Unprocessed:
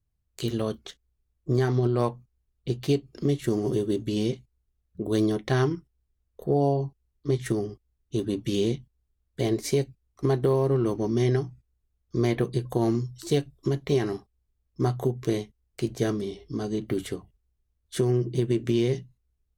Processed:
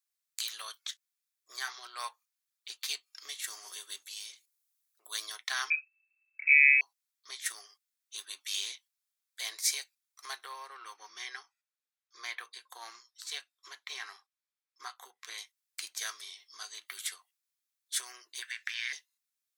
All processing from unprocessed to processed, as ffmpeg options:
ffmpeg -i in.wav -filter_complex "[0:a]asettb=1/sr,asplit=3[link_01][link_02][link_03];[link_01]atrim=end=4.024[link_04];[link_02]atrim=start=4.02:end=5.06,asetpts=PTS-STARTPTS,afade=type=in:duration=0.004:curve=qsin,afade=type=out:start_time=1.036:duration=0.004:curve=qsin,highshelf=frequency=5900:gain=9,bandreject=frequency=50:width_type=h:width=6,bandreject=frequency=100:width_type=h:width=6,bandreject=frequency=150:width_type=h:width=6,bandreject=frequency=200:width_type=h:width=6,bandreject=frequency=250:width_type=h:width=6,bandreject=frequency=300:width_type=h:width=6,bandreject=frequency=350:width_type=h:width=6,acompressor=threshold=-39dB:ratio=2:attack=3.2:release=140:knee=1:detection=peak[link_05];[link_03]atrim=start=5.056[link_06];[link_04][link_05]acrossfade=duration=0.004:curve1=hsin:curve2=qsin[link_07];[link_07][link_06]acrossfade=duration=0.004:curve1=qsin:curve2=hsin,asettb=1/sr,asplit=3[link_08][link_09][link_10];[link_08]atrim=end=5.704[link_11];[link_09]atrim=start=5.7:end=6.81,asetpts=PTS-STARTPTS,afade=type=in:duration=0.004:curve=qsin,afade=type=out:start_time=1.106:duration=0.004:curve=qsin,highpass=frequency=69:poles=1,lowpass=frequency=2300:width_type=q:width=0.5098,lowpass=frequency=2300:width_type=q:width=0.6013,lowpass=frequency=2300:width_type=q:width=0.9,lowpass=frequency=2300:width_type=q:width=2.563,afreqshift=-2700[link_12];[link_10]atrim=start=6.806[link_13];[link_11][link_12]acrossfade=duration=0.004:curve1=hsin:curve2=qsin[link_14];[link_14][link_13]acrossfade=duration=0.004:curve1=qsin:curve2=hsin,asettb=1/sr,asplit=3[link_15][link_16][link_17];[link_15]atrim=end=10.434[link_18];[link_16]atrim=start=10.43:end=15.38,asetpts=PTS-STARTPTS,afade=type=in:duration=0.004:curve=qsin,afade=type=out:start_time=4.946:duration=0.004:curve=qsin,lowpass=frequency=2500:poles=1,bandreject=frequency=640:width=7.8[link_19];[link_17]atrim=start=15.376[link_20];[link_18][link_19]acrossfade=duration=0.004:curve1=hsin:curve2=qsin[link_21];[link_21][link_20]acrossfade=duration=0.004:curve1=qsin:curve2=hsin,asettb=1/sr,asplit=3[link_22][link_23][link_24];[link_22]atrim=end=18.424[link_25];[link_23]atrim=start=18.42:end=18.93,asetpts=PTS-STARTPTS,afade=type=in:duration=0.004:curve=qsin,afade=type=out:start_time=0.506:duration=0.004:curve=qsin,acrossover=split=3300[link_26][link_27];[link_27]acompressor=threshold=-56dB:ratio=4:attack=1:release=60[link_28];[link_26][link_28]amix=inputs=2:normalize=0,highpass=frequency=1700:width_type=q:width=4.8,equalizer=frequency=5200:width_type=o:width=0.38:gain=8.5[link_29];[link_24]atrim=start=18.926[link_30];[link_25][link_29]acrossfade=duration=0.004:curve1=hsin:curve2=qsin[link_31];[link_31][link_30]acrossfade=duration=0.004:curve1=qsin:curve2=hsin,highpass=frequency=1100:width=0.5412,highpass=frequency=1100:width=1.3066,highshelf=frequency=2100:gain=11.5,bandreject=frequency=2900:width=13,volume=-4.5dB" out.wav

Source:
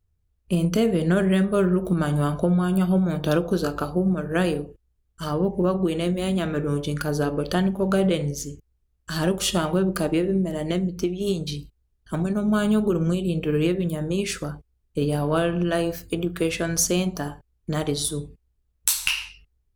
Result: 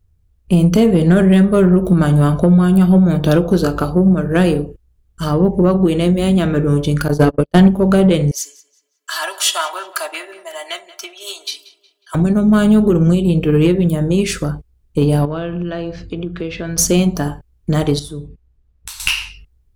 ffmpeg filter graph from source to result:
ffmpeg -i in.wav -filter_complex "[0:a]asettb=1/sr,asplit=3[link_01][link_02][link_03];[link_01]atrim=end=7.084[link_04];[link_02]atrim=start=7.08:end=7.68,asetpts=PTS-STARTPTS,afade=type=in:duration=0.004:curve=qsin,afade=type=out:start_time=0.596:duration=0.004:curve=qsin,agate=range=-58dB:threshold=-24dB:ratio=16:release=100:detection=peak,acontrast=38[link_05];[link_03]atrim=start=7.676[link_06];[link_04][link_05]acrossfade=duration=0.004:curve1=hsin:curve2=qsin[link_07];[link_07][link_06]acrossfade=duration=0.004:curve1=qsin:curve2=hsin,asettb=1/sr,asplit=3[link_08][link_09][link_10];[link_08]atrim=end=8.314[link_11];[link_09]atrim=start=8.31:end=12.15,asetpts=PTS-STARTPTS,afade=type=in:duration=0.004:curve=qsin,afade=type=out:start_time=3.836:duration=0.004:curve=qsin,highpass=frequency=840:width=0.5412,highpass=frequency=840:width=1.3066,aecho=1:1:3:0.83,atrim=end_sample=169344,asplit=2[link_12][link_13];[link_13]adelay=182,lowpass=frequency=4100:poles=1,volume=-16.5dB,asplit=2[link_14][link_15];[link_15]adelay=182,lowpass=frequency=4100:poles=1,volume=0.46,asplit=2[link_16][link_17];[link_17]adelay=182,lowpass=frequency=4100:poles=1,volume=0.46,asplit=2[link_18][link_19];[link_19]adelay=182,lowpass=frequency=4100:poles=1,volume=0.46[link_20];[link_12][link_14][link_16][link_18][link_20]amix=inputs=5:normalize=0,atrim=end_sample=169344[link_21];[link_10]atrim=start=12.146[link_22];[link_11][link_21]acrossfade=duration=0.004:curve1=hsin:curve2=qsin[link_23];[link_23][link_22]acrossfade=duration=0.004:curve1=qsin:curve2=hsin,asettb=1/sr,asplit=3[link_24][link_25][link_26];[link_24]atrim=end=15.254[link_27];[link_25]atrim=start=15.25:end=16.78,asetpts=PTS-STARTPTS,afade=type=in:duration=0.004:curve=qsin,afade=type=out:start_time=1.526:duration=0.004:curve=qsin,lowpass=frequency=4800:width=0.5412,lowpass=frequency=4800:width=1.3066,acompressor=threshold=-37dB:ratio=2:attack=3.2:release=140:knee=1:detection=peak[link_28];[link_26]atrim=start=16.776[link_29];[link_27][link_28]acrossfade=duration=0.004:curve1=hsin:curve2=qsin[link_30];[link_30][link_29]acrossfade=duration=0.004:curve1=qsin:curve2=hsin,asettb=1/sr,asplit=3[link_31][link_32][link_33];[link_31]atrim=end=17.994[link_34];[link_32]atrim=start=17.99:end=19,asetpts=PTS-STARTPTS,afade=type=in:duration=0.004:curve=qsin,afade=type=out:start_time=1.006:duration=0.004:curve=qsin,lowpass=frequency=3100:poles=1,acompressor=threshold=-51dB:ratio=1.5:attack=3.2:release=140:knee=1:detection=peak[link_35];[link_33]atrim=start=18.996[link_36];[link_34][link_35]acrossfade=duration=0.004:curve1=hsin:curve2=qsin[link_37];[link_37][link_36]acrossfade=duration=0.004:curve1=qsin:curve2=hsin,lowshelf=frequency=320:gain=6,acontrast=80" out.wav

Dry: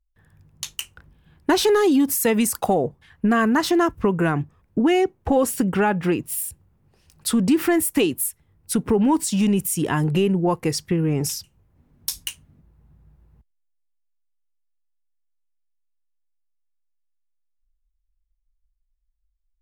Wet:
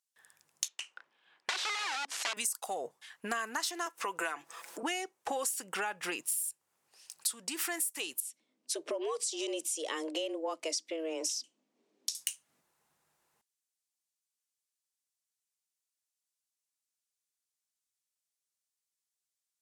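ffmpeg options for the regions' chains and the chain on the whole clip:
ffmpeg -i in.wav -filter_complex "[0:a]asettb=1/sr,asplit=3[link_01][link_02][link_03];[link_01]atrim=end=0.684[link_04];[link_02]atrim=start=0.68:end=2.37,asetpts=PTS-STARTPTS,afade=type=in:duration=0.004:curve=qsin,afade=type=out:start_time=1.686:duration=0.004:curve=qsin,aeval=exprs='(mod(6.68*val(0)+1,2)-1)/6.68':channel_layout=same,highpass=260,lowpass=3000[link_05];[link_03]atrim=start=2.366[link_06];[link_04][link_05]acrossfade=duration=0.004:curve1=hsin:curve2=qsin[link_07];[link_07][link_06]acrossfade=duration=0.004:curve1=qsin:curve2=hsin,asettb=1/sr,asplit=3[link_08][link_09][link_10];[link_08]atrim=end=3.864[link_11];[link_09]atrim=start=3.86:end=4.83,asetpts=PTS-STARTPTS,afade=type=in:duration=0.004:curve=qsin,afade=type=out:start_time=0.966:duration=0.004:curve=qsin,highpass=350,acompressor=mode=upward:threshold=-25dB:ratio=2.5:attack=3.2:release=140:knee=2.83:detection=peak,aecho=1:1:6:0.44,atrim=end_sample=42777[link_12];[link_10]atrim=start=4.826[link_13];[link_11][link_12]acrossfade=duration=0.004:curve1=hsin:curve2=qsin[link_14];[link_14][link_13]acrossfade=duration=0.004:curve1=qsin:curve2=hsin,asettb=1/sr,asplit=3[link_15][link_16][link_17];[link_15]atrim=end=8.204[link_18];[link_16]atrim=start=8.2:end=12.15,asetpts=PTS-STARTPTS,afade=type=in:duration=0.004:curve=qsin,afade=type=out:start_time=3.946:duration=0.004:curve=qsin,equalizer=frequency=1200:width=0.65:gain=-11,afreqshift=160,highpass=100,lowpass=4500[link_19];[link_17]atrim=start=12.146[link_20];[link_18][link_19]acrossfade=duration=0.004:curve1=hsin:curve2=qsin[link_21];[link_21][link_20]acrossfade=duration=0.004:curve1=qsin:curve2=hsin,highpass=700,equalizer=frequency=7700:width=0.49:gain=15,acompressor=threshold=-28dB:ratio=10,volume=-3.5dB" out.wav

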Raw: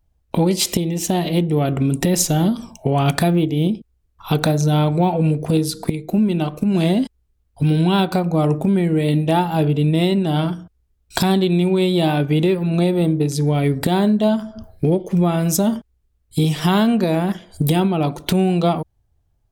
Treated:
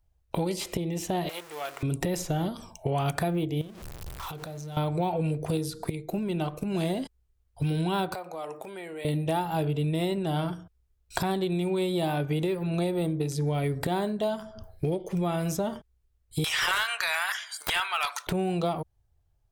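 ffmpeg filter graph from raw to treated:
ffmpeg -i in.wav -filter_complex "[0:a]asettb=1/sr,asplit=3[link_01][link_02][link_03];[link_01]atrim=end=1.294[link_04];[link_02]atrim=start=1.29:end=1.83,asetpts=PTS-STARTPTS,afade=type=in:duration=0.004:curve=qsin,afade=type=out:start_time=0.536:duration=0.004:curve=qsin,aeval=exprs='val(0)+0.5*0.0376*sgn(val(0))':channel_layout=same,highpass=1000,acrusher=bits=9:dc=4:mix=0:aa=0.000001[link_05];[link_03]atrim=start=1.826[link_06];[link_04][link_05]acrossfade=duration=0.004:curve1=hsin:curve2=qsin[link_07];[link_07][link_06]acrossfade=duration=0.004:curve1=qsin:curve2=hsin,asettb=1/sr,asplit=3[link_08][link_09][link_10];[link_08]atrim=end=3.614[link_11];[link_09]atrim=start=3.61:end=4.77,asetpts=PTS-STARTPTS,afade=type=in:duration=0.004:curve=qsin,afade=type=out:start_time=1.156:duration=0.004:curve=qsin,aeval=exprs='val(0)+0.5*0.0473*sgn(val(0))':channel_layout=same,bandreject=frequency=60:width_type=h:width=6,bandreject=frequency=120:width_type=h:width=6,bandreject=frequency=180:width_type=h:width=6,bandreject=frequency=240:width_type=h:width=6,bandreject=frequency=300:width_type=h:width=6,bandreject=frequency=360:width_type=h:width=6,bandreject=frequency=420:width_type=h:width=6,bandreject=frequency=480:width_type=h:width=6,acompressor=threshold=-29dB:ratio=12:attack=3.2:release=140:knee=1:detection=peak[link_12];[link_10]atrim=start=4.766[link_13];[link_11][link_12]acrossfade=duration=0.004:curve1=hsin:curve2=qsin[link_14];[link_14][link_13]acrossfade=duration=0.004:curve1=qsin:curve2=hsin,asettb=1/sr,asplit=3[link_15][link_16][link_17];[link_15]atrim=end=8.144[link_18];[link_16]atrim=start=8.14:end=9.05,asetpts=PTS-STARTPTS,afade=type=in:duration=0.004:curve=qsin,afade=type=out:start_time=0.906:duration=0.004:curve=qsin,highpass=570,acompressor=threshold=-30dB:ratio=2.5:attack=3.2:release=140:knee=1:detection=peak[link_19];[link_17]atrim=start=9.046[link_20];[link_18][link_19]acrossfade=duration=0.004:curve1=hsin:curve2=qsin[link_21];[link_21][link_20]acrossfade=duration=0.004:curve1=qsin:curve2=hsin,asettb=1/sr,asplit=3[link_22][link_23][link_24];[link_22]atrim=end=16.444[link_25];[link_23]atrim=start=16.44:end=18.27,asetpts=PTS-STARTPTS,afade=type=in:duration=0.004:curve=qsin,afade=type=out:start_time=1.826:duration=0.004:curve=qsin,highpass=frequency=1400:width=0.5412,highpass=frequency=1400:width=1.3066,equalizer=frequency=5900:width_type=o:width=1.1:gain=8,aeval=exprs='0.562*sin(PI/2*5.01*val(0)/0.562)':channel_layout=same[link_26];[link_24]atrim=start=18.266[link_27];[link_25][link_26]acrossfade=duration=0.004:curve1=hsin:curve2=qsin[link_28];[link_28][link_27]acrossfade=duration=0.004:curve1=qsin:curve2=hsin,equalizer=frequency=230:width_type=o:width=0.7:gain=-11.5,acrossover=split=2300|4900[link_29][link_30][link_31];[link_29]acompressor=threshold=-20dB:ratio=4[link_32];[link_30]acompressor=threshold=-44dB:ratio=4[link_33];[link_31]acompressor=threshold=-36dB:ratio=4[link_34];[link_32][link_33][link_34]amix=inputs=3:normalize=0,volume=-4.5dB" out.wav

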